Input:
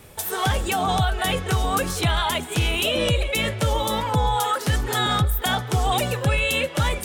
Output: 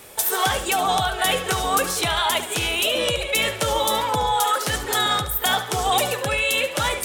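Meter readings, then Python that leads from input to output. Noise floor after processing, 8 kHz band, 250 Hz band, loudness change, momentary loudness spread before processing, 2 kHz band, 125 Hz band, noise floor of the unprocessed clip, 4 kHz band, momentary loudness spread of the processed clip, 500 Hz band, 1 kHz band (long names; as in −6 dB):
−32 dBFS, +5.5 dB, −4.5 dB, +1.5 dB, 3 LU, +2.5 dB, −9.5 dB, −34 dBFS, +3.0 dB, 2 LU, +1.5 dB, +2.5 dB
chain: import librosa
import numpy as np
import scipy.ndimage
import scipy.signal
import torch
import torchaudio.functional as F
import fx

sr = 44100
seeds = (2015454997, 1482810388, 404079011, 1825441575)

y = fx.bass_treble(x, sr, bass_db=-13, treble_db=3)
y = fx.echo_feedback(y, sr, ms=72, feedback_pct=38, wet_db=-12.0)
y = fx.rider(y, sr, range_db=10, speed_s=0.5)
y = y * librosa.db_to_amplitude(2.0)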